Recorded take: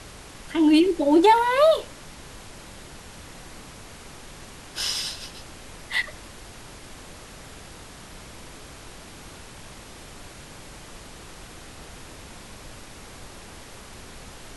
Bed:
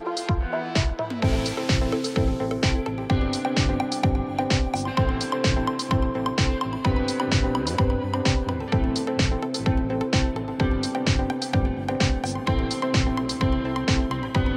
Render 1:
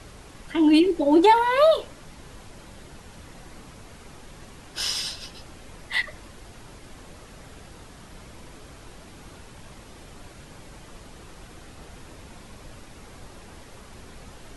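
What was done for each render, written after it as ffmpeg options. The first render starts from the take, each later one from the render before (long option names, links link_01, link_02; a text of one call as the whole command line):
ffmpeg -i in.wav -af "afftdn=noise_reduction=6:noise_floor=-44" out.wav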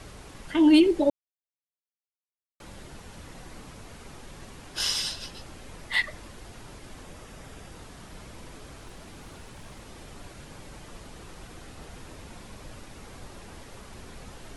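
ffmpeg -i in.wav -filter_complex "[0:a]asettb=1/sr,asplit=3[link_01][link_02][link_03];[link_01]atrim=end=7.044[link_04];[link_02]atrim=start=7.04:end=7.76,asetpts=PTS-STARTPTS,afade=type=in:duration=0.004:curve=qsin,afade=type=out:start_time=0.716:duration=0.004:curve=qsin,bandreject=frequency=4200:width=12[link_05];[link_03]atrim=start=7.756[link_06];[link_04][link_05]acrossfade=duration=0.004:curve1=hsin:curve2=qsin[link_07];[link_07][link_06]acrossfade=duration=0.004:curve1=qsin:curve2=hsin,asettb=1/sr,asplit=3[link_08][link_09][link_10];[link_08]atrim=end=8.804[link_11];[link_09]atrim=start=8.8:end=9.86,asetpts=PTS-STARTPTS,afade=type=in:duration=0.004:curve=qsin,afade=type=out:start_time=1.056:duration=0.004:curve=qsin,aeval=exprs='0.0141*(abs(mod(val(0)/0.0141+3,4)-2)-1)':channel_layout=same[link_12];[link_10]atrim=start=9.856[link_13];[link_11][link_12]acrossfade=duration=0.004:curve1=hsin:curve2=qsin[link_14];[link_14][link_13]acrossfade=duration=0.004:curve1=qsin:curve2=hsin,asplit=3[link_15][link_16][link_17];[link_15]atrim=end=1.1,asetpts=PTS-STARTPTS,afade=type=out:start_time=1.096:duration=0.004:curve=hsin[link_18];[link_16]atrim=start=1.1:end=2.6,asetpts=PTS-STARTPTS,volume=0[link_19];[link_17]atrim=start=2.6,asetpts=PTS-STARTPTS,afade=type=in:duration=0.004:curve=hsin[link_20];[link_18][link_19][link_20]concat=n=3:v=0:a=1" out.wav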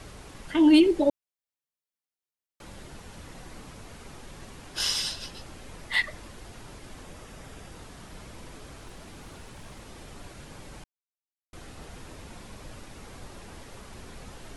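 ffmpeg -i in.wav -filter_complex "[0:a]asplit=3[link_01][link_02][link_03];[link_01]atrim=end=10.84,asetpts=PTS-STARTPTS,afade=type=out:start_time=10.836:duration=0.004:curve=hsin[link_04];[link_02]atrim=start=10.84:end=11.53,asetpts=PTS-STARTPTS,volume=0[link_05];[link_03]atrim=start=11.53,asetpts=PTS-STARTPTS,afade=type=in:duration=0.004:curve=hsin[link_06];[link_04][link_05][link_06]concat=n=3:v=0:a=1" out.wav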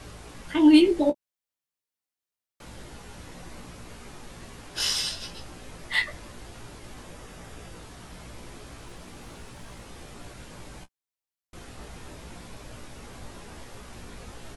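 ffmpeg -i in.wav -filter_complex "[0:a]asplit=2[link_01][link_02];[link_02]adelay=17,volume=-12.5dB[link_03];[link_01][link_03]amix=inputs=2:normalize=0,asplit=2[link_04][link_05];[link_05]aecho=0:1:17|29:0.299|0.168[link_06];[link_04][link_06]amix=inputs=2:normalize=0" out.wav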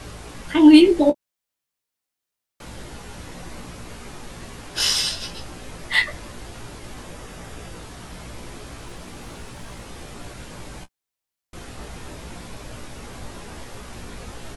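ffmpeg -i in.wav -af "volume=6dB,alimiter=limit=-1dB:level=0:latency=1" out.wav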